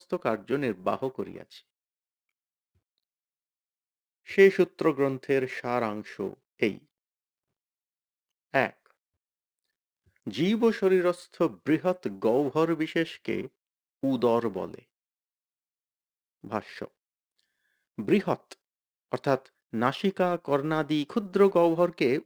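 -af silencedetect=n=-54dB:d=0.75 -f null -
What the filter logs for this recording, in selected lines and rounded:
silence_start: 1.61
silence_end: 4.26 | silence_duration: 2.65
silence_start: 6.84
silence_end: 8.53 | silence_duration: 1.70
silence_start: 8.91
silence_end: 10.08 | silence_duration: 1.17
silence_start: 14.83
silence_end: 16.44 | silence_duration: 1.60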